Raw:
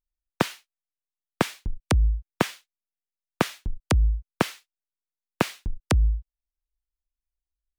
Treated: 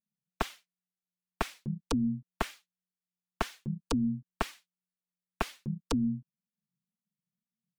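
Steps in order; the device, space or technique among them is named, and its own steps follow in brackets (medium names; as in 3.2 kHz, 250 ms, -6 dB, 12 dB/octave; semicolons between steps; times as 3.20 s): alien voice (ring modulator 180 Hz; flange 2 Hz, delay 3.2 ms, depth 3.7 ms, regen 0%); trim -3 dB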